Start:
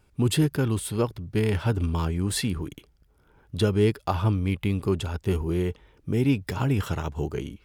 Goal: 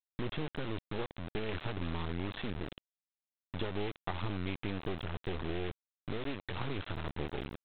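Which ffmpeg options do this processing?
-af "acompressor=threshold=-25dB:ratio=12,aresample=8000,acrusher=bits=3:dc=4:mix=0:aa=0.000001,aresample=44100,volume=-4.5dB"

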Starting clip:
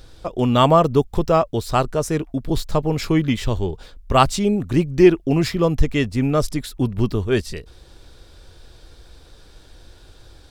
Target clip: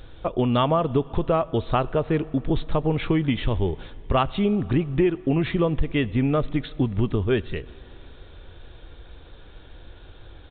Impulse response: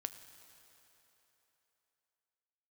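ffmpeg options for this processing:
-filter_complex "[0:a]acompressor=threshold=-19dB:ratio=6,asplit=2[a][b];[1:a]atrim=start_sample=2205[c];[b][c]afir=irnorm=-1:irlink=0,volume=-3.5dB[d];[a][d]amix=inputs=2:normalize=0,aresample=8000,aresample=44100,volume=-2dB"

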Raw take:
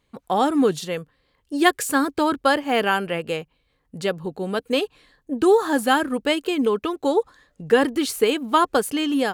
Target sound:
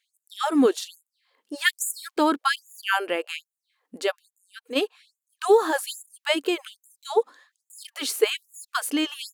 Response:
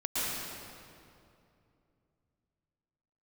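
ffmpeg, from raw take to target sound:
-filter_complex "[0:a]asplit=3[a][b][c];[a]afade=t=out:st=4.29:d=0.02[d];[b]acompressor=threshold=-31dB:ratio=6,afade=t=in:st=4.29:d=0.02,afade=t=out:st=4.75:d=0.02[e];[c]afade=t=in:st=4.75:d=0.02[f];[d][e][f]amix=inputs=3:normalize=0,afftfilt=real='re*gte(b*sr/1024,200*pow(6800/200,0.5+0.5*sin(2*PI*1.2*pts/sr)))':imag='im*gte(b*sr/1024,200*pow(6800/200,0.5+0.5*sin(2*PI*1.2*pts/sr)))':win_size=1024:overlap=0.75"

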